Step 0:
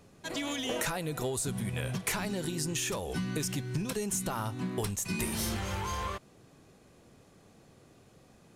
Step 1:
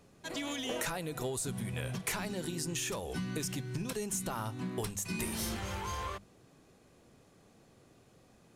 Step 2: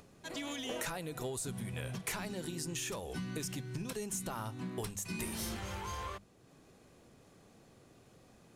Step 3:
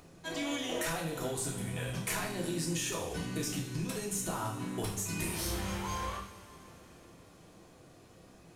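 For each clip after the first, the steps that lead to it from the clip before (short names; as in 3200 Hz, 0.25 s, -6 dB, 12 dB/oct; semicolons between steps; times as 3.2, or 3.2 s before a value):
notches 50/100/150/200 Hz; gain -3 dB
upward compressor, threshold -51 dBFS; gain -3 dB
two-slope reverb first 0.57 s, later 4.5 s, from -19 dB, DRR -2.5 dB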